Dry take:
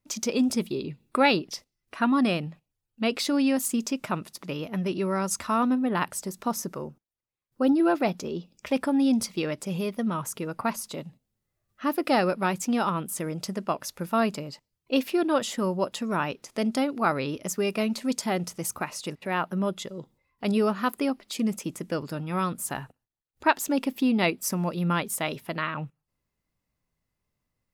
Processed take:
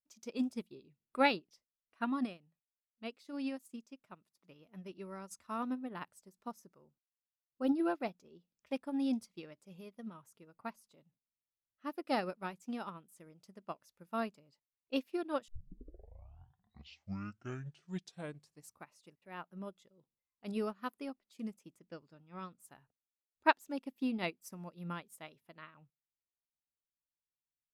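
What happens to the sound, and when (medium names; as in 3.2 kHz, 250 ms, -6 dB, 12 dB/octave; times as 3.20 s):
2.13–4.43 s: upward expansion, over -31 dBFS
15.48 s: tape start 3.47 s
21.79–22.60 s: low-pass 7.1 kHz 24 dB/octave
whole clip: upward expansion 2.5:1, over -33 dBFS; trim -4.5 dB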